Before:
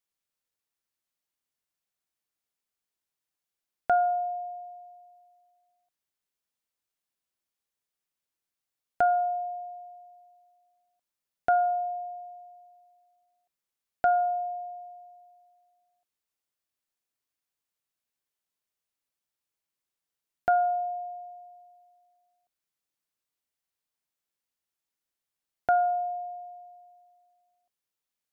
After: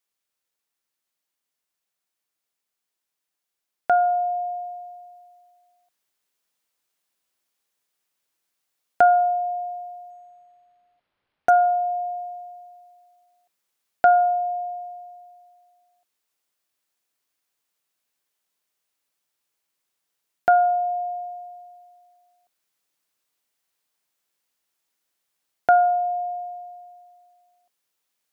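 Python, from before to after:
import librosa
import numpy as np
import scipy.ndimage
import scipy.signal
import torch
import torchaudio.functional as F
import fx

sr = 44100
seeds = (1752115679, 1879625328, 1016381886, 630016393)

p1 = fx.low_shelf(x, sr, hz=150.0, db=-10.5)
p2 = fx.rider(p1, sr, range_db=10, speed_s=0.5)
p3 = p1 + F.gain(torch.from_numpy(p2), 1.0).numpy()
y = fx.resample_linear(p3, sr, factor=6, at=(10.1, 11.5))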